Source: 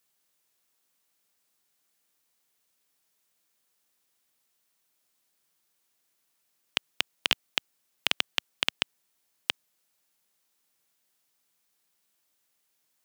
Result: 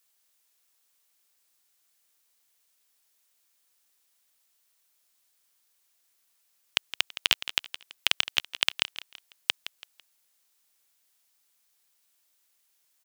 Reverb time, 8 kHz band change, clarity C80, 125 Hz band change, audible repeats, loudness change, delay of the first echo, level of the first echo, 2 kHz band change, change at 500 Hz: none, +4.0 dB, none, n/a, 3, +2.0 dB, 0.166 s, -13.5 dB, +2.0 dB, -2.5 dB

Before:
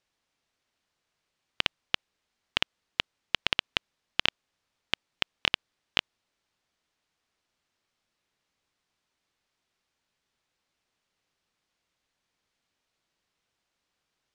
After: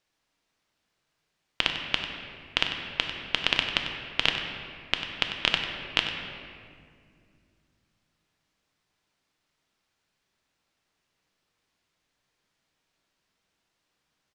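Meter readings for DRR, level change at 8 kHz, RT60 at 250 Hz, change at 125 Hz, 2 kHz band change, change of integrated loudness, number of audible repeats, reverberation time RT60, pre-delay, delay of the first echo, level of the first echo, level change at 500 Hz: 2.5 dB, +2.5 dB, 3.4 s, +5.0 dB, +3.5 dB, +2.5 dB, 1, 2.2 s, 3 ms, 96 ms, -11.5 dB, +4.0 dB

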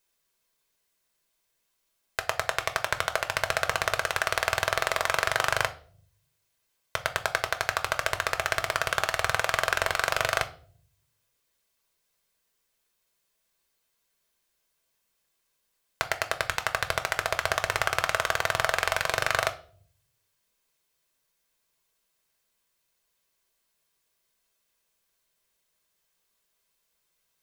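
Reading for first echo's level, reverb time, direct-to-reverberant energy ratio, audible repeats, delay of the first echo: none, 0.50 s, 6.5 dB, none, none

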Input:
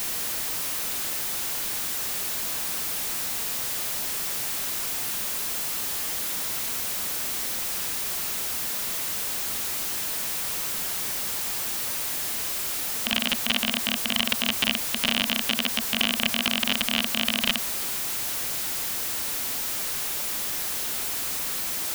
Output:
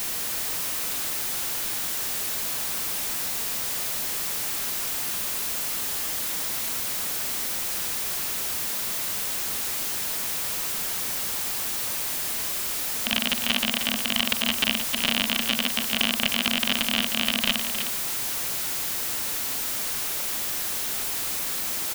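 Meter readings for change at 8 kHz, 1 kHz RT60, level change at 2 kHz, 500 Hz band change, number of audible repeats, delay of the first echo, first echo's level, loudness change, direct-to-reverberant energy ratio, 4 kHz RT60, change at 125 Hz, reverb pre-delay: +0.5 dB, none, +0.5 dB, +0.5 dB, 1, 0.31 s, -8.5 dB, +0.5 dB, none, none, +0.5 dB, none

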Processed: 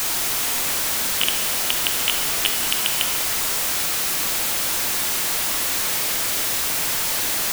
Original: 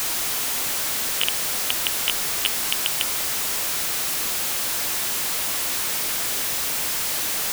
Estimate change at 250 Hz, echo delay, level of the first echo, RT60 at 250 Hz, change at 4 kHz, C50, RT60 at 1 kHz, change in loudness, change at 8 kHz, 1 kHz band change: +3.5 dB, none, none, 2.7 s, +2.5 dB, 5.5 dB, 2.0 s, +2.5 dB, +2.0 dB, +3.0 dB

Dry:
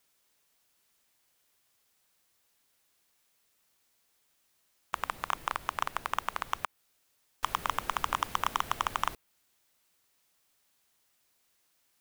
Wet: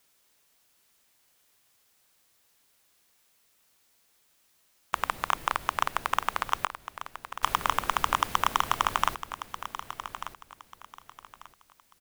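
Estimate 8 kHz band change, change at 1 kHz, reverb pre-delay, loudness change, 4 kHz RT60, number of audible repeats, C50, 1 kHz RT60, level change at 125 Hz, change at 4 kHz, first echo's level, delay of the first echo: +5.5 dB, +5.5 dB, none, +4.0 dB, none, 2, none, none, +5.0 dB, +5.5 dB, -12.0 dB, 1.19 s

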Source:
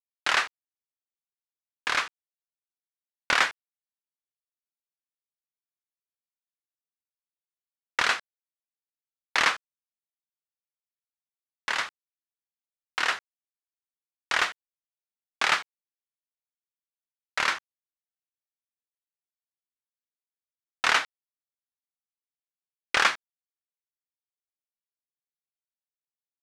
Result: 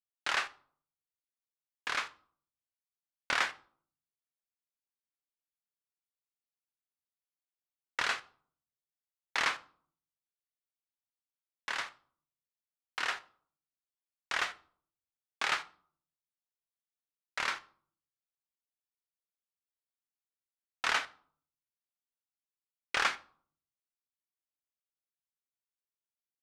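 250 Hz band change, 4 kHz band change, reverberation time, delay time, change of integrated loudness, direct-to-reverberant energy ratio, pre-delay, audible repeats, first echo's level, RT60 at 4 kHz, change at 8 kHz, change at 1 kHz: -7.5 dB, -8.0 dB, 0.50 s, none, -8.0 dB, 11.0 dB, 7 ms, none, none, 0.35 s, -8.0 dB, -7.5 dB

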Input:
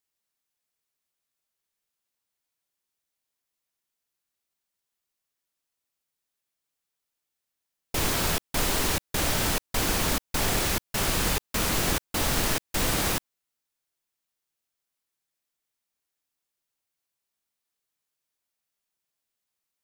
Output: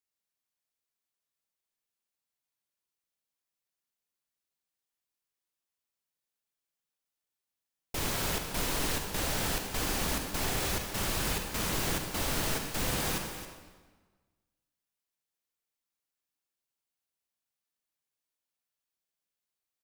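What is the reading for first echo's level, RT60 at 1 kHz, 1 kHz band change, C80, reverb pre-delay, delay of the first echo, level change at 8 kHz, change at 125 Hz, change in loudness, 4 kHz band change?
-11.5 dB, 1.4 s, -5.5 dB, 5.5 dB, 40 ms, 0.271 s, -5.5 dB, -5.0 dB, -5.5 dB, -5.5 dB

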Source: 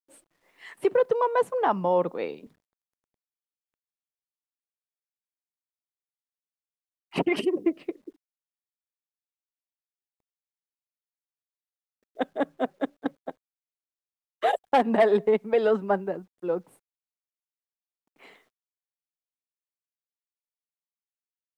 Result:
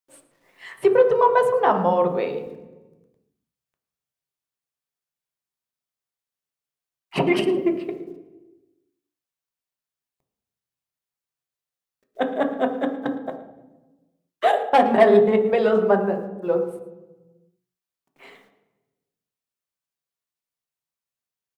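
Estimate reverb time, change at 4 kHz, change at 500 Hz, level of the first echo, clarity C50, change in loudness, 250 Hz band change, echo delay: 1.1 s, +5.0 dB, +6.0 dB, -18.0 dB, 9.0 dB, +5.5 dB, +5.5 dB, 0.111 s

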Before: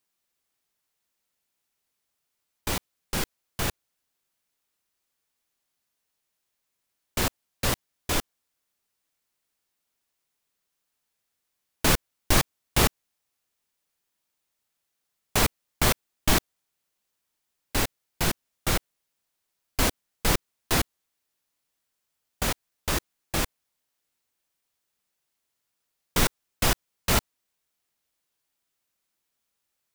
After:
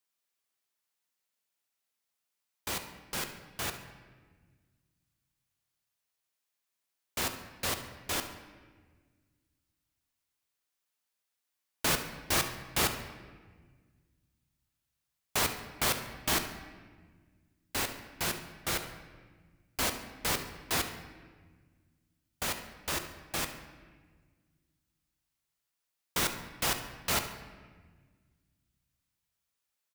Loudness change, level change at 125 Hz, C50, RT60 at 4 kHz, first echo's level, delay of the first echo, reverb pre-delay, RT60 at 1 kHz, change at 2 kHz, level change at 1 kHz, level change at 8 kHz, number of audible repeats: -5.5 dB, -11.5 dB, 8.0 dB, 1.1 s, -15.0 dB, 70 ms, 12 ms, 1.4 s, -4.5 dB, -5.5 dB, -4.5 dB, 1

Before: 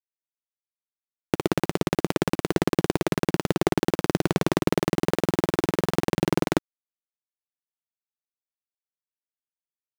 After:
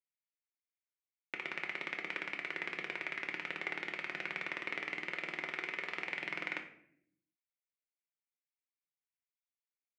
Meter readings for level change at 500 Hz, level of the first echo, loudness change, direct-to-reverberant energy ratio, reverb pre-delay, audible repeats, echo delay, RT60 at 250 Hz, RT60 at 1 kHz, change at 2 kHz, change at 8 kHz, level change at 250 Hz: -24.0 dB, none, -13.5 dB, 2.0 dB, 3 ms, none, none, 1.1 s, 0.55 s, -2.5 dB, under -25 dB, -27.5 dB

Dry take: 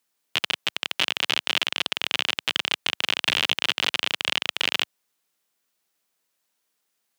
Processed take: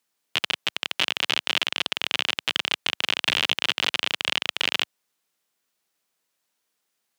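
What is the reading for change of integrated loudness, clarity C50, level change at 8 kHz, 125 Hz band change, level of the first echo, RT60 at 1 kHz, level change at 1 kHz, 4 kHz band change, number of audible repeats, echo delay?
0.0 dB, none, -1.0 dB, 0.0 dB, none, none, 0.0 dB, 0.0 dB, none, none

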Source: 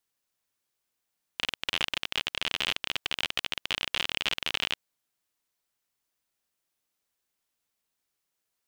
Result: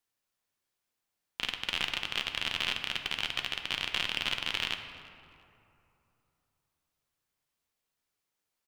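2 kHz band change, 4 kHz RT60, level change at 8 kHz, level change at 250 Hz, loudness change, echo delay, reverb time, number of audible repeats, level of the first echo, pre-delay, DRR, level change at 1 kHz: -1.5 dB, 1.5 s, -3.5 dB, -1.5 dB, -2.0 dB, 0.345 s, 2.8 s, 1, -23.0 dB, 5 ms, 5.0 dB, -1.5 dB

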